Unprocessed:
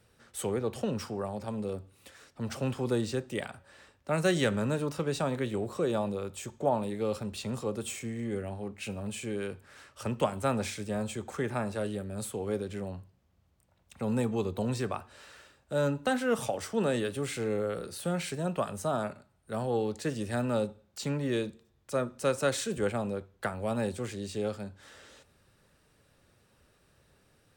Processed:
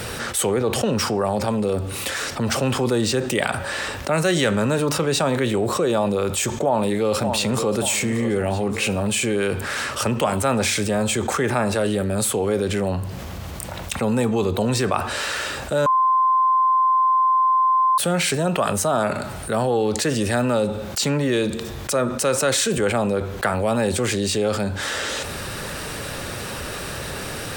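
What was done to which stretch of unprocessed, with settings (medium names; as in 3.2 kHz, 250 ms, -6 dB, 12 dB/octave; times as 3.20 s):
6.63–7.79 s: echo throw 580 ms, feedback 45%, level -13.5 dB
15.86–17.98 s: bleep 1.04 kHz -20 dBFS
whole clip: bass shelf 350 Hz -5.5 dB; level flattener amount 70%; trim +6.5 dB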